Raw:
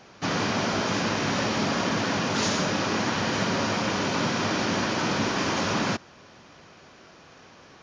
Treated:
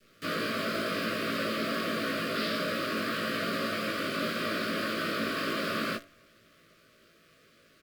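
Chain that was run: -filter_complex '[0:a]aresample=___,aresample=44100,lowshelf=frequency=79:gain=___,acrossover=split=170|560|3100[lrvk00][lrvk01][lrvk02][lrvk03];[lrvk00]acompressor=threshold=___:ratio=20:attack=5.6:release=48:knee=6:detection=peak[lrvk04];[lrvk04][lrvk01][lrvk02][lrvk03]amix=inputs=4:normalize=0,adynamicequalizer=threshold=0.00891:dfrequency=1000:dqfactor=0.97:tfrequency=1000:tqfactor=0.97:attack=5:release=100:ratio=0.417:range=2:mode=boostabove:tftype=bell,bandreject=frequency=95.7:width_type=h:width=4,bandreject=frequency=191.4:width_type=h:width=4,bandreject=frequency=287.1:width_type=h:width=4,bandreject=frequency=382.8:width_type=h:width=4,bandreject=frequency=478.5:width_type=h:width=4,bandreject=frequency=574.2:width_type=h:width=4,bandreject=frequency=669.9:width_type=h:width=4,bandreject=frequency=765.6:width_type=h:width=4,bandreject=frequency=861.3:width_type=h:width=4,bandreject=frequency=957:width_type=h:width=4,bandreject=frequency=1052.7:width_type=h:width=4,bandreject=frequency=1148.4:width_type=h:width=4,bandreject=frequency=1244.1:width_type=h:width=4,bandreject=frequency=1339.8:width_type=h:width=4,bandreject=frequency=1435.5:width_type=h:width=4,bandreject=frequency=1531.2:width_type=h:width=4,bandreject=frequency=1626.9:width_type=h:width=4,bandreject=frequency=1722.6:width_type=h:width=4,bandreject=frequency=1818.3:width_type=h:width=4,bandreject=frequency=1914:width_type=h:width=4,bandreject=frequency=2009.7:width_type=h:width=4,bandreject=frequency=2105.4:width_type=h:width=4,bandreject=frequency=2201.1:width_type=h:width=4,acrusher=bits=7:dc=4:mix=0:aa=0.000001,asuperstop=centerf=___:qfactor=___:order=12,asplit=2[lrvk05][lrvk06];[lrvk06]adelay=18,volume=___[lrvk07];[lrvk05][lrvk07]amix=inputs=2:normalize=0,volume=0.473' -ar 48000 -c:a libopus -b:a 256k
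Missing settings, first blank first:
11025, -6, 0.00398, 860, 2, 0.631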